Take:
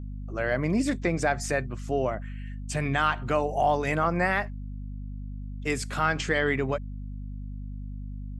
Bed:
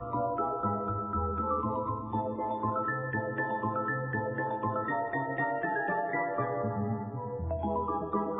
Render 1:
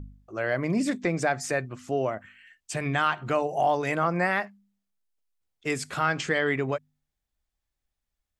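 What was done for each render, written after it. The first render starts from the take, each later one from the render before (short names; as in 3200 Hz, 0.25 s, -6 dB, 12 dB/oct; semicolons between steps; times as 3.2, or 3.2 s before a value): de-hum 50 Hz, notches 5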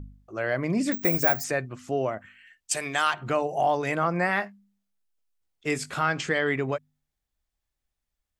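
0.92–1.44 careless resampling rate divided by 2×, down filtered, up zero stuff; 2.71–3.14 tone controls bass -15 dB, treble +14 dB; 4.27–6.03 doubler 20 ms -9.5 dB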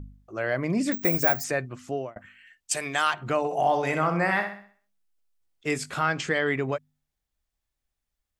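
1.75–2.16 fade out equal-power; 3.38–5.67 flutter echo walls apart 11 m, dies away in 0.49 s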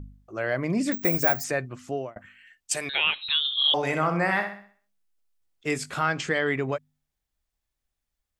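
2.89–3.74 inverted band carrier 4000 Hz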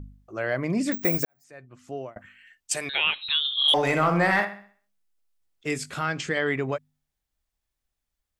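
1.25–2.15 fade in quadratic; 3.68–4.45 sample leveller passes 1; 5.67–6.37 bell 920 Hz -4.5 dB 1.6 oct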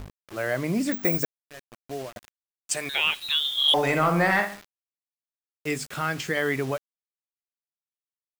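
bit-crush 7-bit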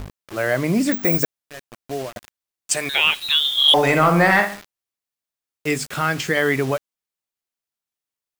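gain +6.5 dB; limiter -3 dBFS, peak gain reduction 3 dB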